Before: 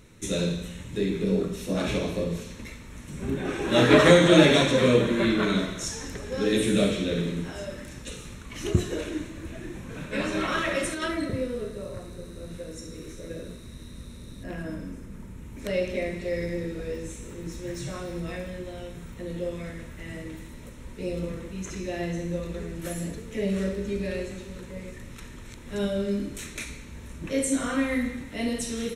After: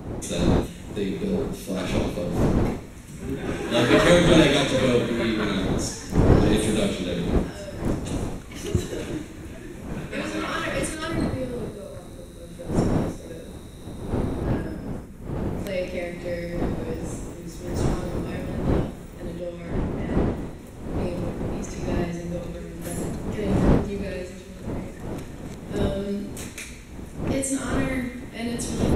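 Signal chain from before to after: wind noise 310 Hz -27 dBFS; high shelf 10000 Hz +8 dB, from 19.4 s -3.5 dB, from 20.59 s +6 dB; gain -1 dB

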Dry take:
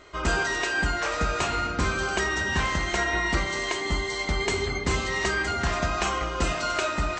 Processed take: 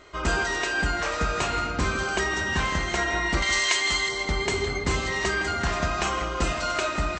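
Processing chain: 3.42–4.09 tilt shelf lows -10 dB, about 860 Hz; outdoor echo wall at 28 m, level -12 dB

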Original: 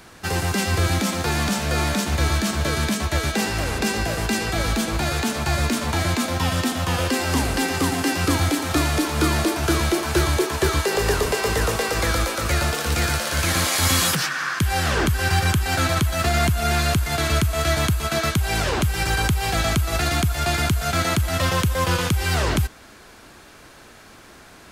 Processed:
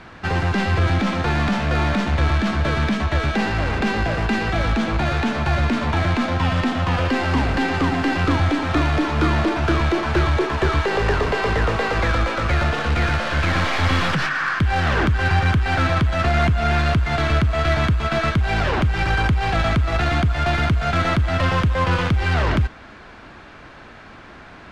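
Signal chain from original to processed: tracing distortion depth 0.18 ms; LPF 2700 Hz 12 dB/oct; bell 420 Hz -3.5 dB 0.85 oct; in parallel at 0 dB: soft clip -26 dBFS, distortion -8 dB

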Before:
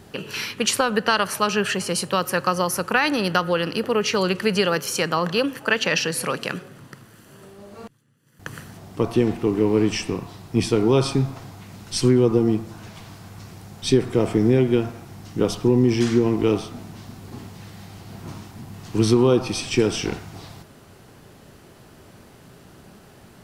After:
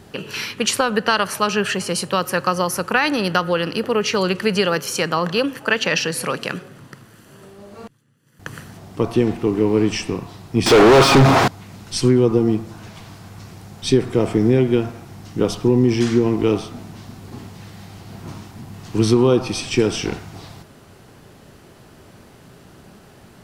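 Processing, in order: 10.66–11.48 overdrive pedal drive 41 dB, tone 2100 Hz, clips at -5 dBFS; high shelf 11000 Hz -3.5 dB; gain +2 dB

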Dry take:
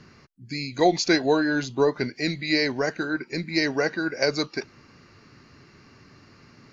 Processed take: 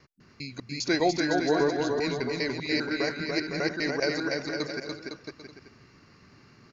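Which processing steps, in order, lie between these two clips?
slices in reverse order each 0.2 s, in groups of 2; bouncing-ball echo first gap 0.29 s, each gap 0.75×, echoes 5; gain -5.5 dB

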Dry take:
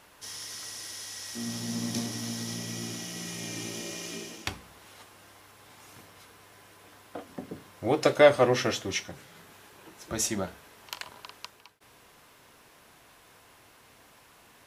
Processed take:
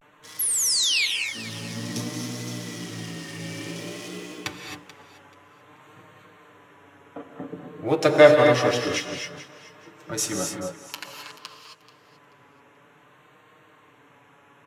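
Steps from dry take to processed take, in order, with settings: Wiener smoothing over 9 samples; HPF 100 Hz; bell 720 Hz -5 dB 0.28 oct; comb 6.8 ms, depth 69%; vibrato 0.54 Hz 79 cents; painted sound fall, 0.39–1.06, 2100–12000 Hz -25 dBFS; on a send: thinning echo 0.434 s, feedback 23%, level -16 dB; on the sum: non-linear reverb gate 0.29 s rising, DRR 2.5 dB; gain +1 dB

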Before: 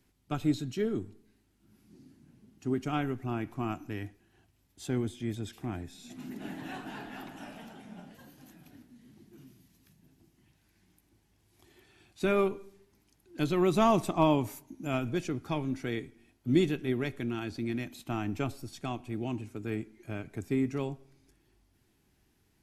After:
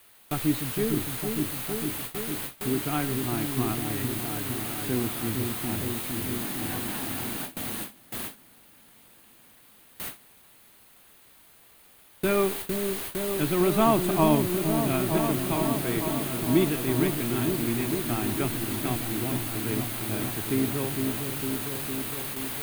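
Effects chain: requantised 6-bit, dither triangular; bell 5600 Hz -12 dB 0.47 oct; notch 7400 Hz, Q 8.2; on a send: repeats that get brighter 0.457 s, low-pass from 400 Hz, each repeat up 1 oct, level -3 dB; on the sum: gate with hold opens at -25 dBFS; gain +2.5 dB

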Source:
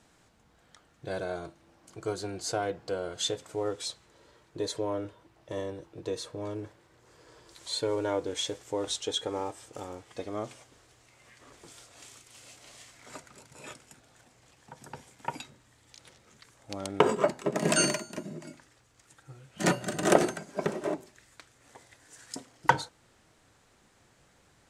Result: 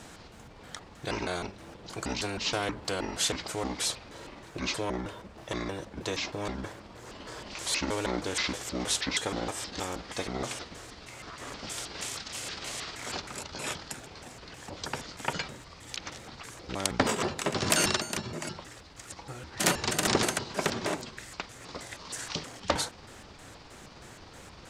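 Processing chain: trilling pitch shifter -8.5 st, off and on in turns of 0.158 s; spectral compressor 2:1; gain +2 dB

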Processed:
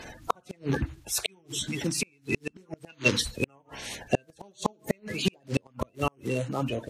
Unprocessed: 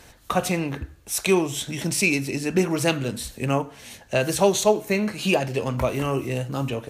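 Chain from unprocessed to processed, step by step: bin magnitudes rounded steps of 30 dB; high shelf 9900 Hz -10 dB; flipped gate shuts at -15 dBFS, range -40 dB; spectral gain 2.9–3.21, 850–6800 Hz +12 dB; vocal rider within 5 dB 0.5 s; gain +1.5 dB

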